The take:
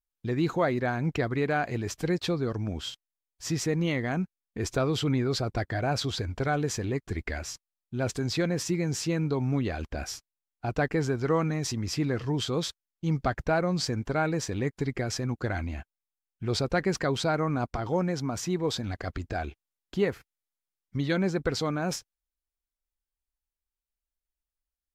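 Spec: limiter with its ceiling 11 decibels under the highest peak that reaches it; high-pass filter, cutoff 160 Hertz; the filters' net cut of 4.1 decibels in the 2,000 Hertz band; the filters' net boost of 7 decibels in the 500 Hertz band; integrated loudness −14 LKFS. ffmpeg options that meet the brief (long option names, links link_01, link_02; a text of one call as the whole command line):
ffmpeg -i in.wav -af "highpass=160,equalizer=frequency=500:width_type=o:gain=9,equalizer=frequency=2000:width_type=o:gain=-6.5,volume=16.5dB,alimiter=limit=-3dB:level=0:latency=1" out.wav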